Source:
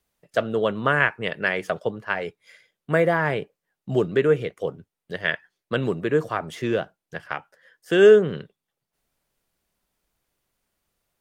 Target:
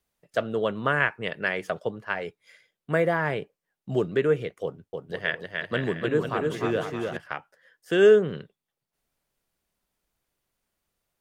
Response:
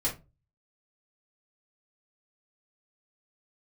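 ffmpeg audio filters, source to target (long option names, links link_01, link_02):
-filter_complex "[0:a]asettb=1/sr,asplit=3[link_01][link_02][link_03];[link_01]atrim=end=4.634[link_04];[link_02]atrim=start=4.63:end=7.17,asetpts=PTS-STARTPTS,afade=type=in:duration=0.004:curve=qsin,afade=type=out:start_time=2.536:duration=0.004:curve=qsin,aecho=1:1:300|495|621.8|704.1|757.7:0.631|0.398|0.251|0.158|0.1,atrim=end_sample=112014[link_05];[link_03]atrim=start=7.166[link_06];[link_04][link_05]acrossfade=duration=0.004:curve1=hsin:curve2=qsin[link_07];[link_07][link_06]acrossfade=duration=0.004:curve1=qsin:curve2=hsin,volume=-3.5dB"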